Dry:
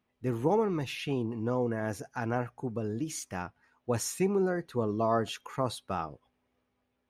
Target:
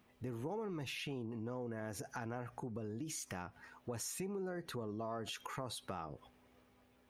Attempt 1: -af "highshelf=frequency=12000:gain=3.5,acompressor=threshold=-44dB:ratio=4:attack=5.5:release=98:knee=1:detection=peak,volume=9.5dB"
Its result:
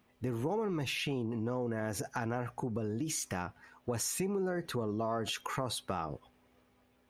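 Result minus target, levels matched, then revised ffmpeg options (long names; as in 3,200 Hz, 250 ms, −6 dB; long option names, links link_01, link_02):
downward compressor: peak gain reduction −8 dB
-af "highshelf=frequency=12000:gain=3.5,acompressor=threshold=-54.5dB:ratio=4:attack=5.5:release=98:knee=1:detection=peak,volume=9.5dB"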